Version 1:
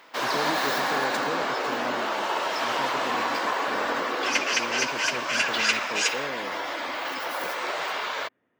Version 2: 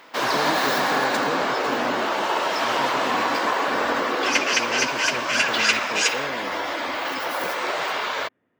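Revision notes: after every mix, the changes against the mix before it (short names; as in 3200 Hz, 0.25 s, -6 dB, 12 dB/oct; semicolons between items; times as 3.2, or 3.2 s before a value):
background +3.5 dB; master: add low shelf 310 Hz +5 dB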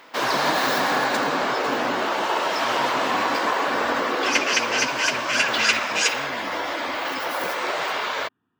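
speech: add fixed phaser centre 2100 Hz, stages 6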